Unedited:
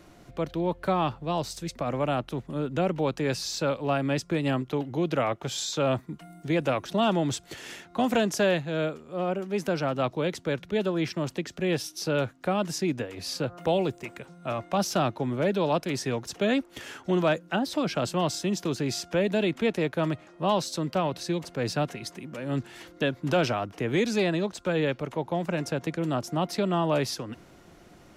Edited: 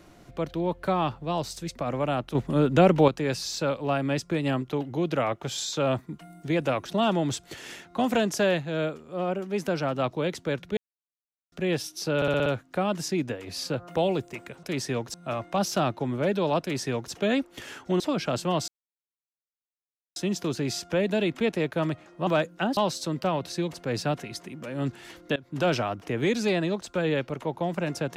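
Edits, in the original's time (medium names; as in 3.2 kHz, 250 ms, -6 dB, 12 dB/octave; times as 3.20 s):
2.35–3.08 s: gain +8 dB
10.77–11.52 s: mute
12.16 s: stutter 0.06 s, 6 plays
15.80–16.31 s: copy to 14.33 s
17.19–17.69 s: move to 20.48 s
18.37 s: insert silence 1.48 s
23.07–23.38 s: fade in, from -23 dB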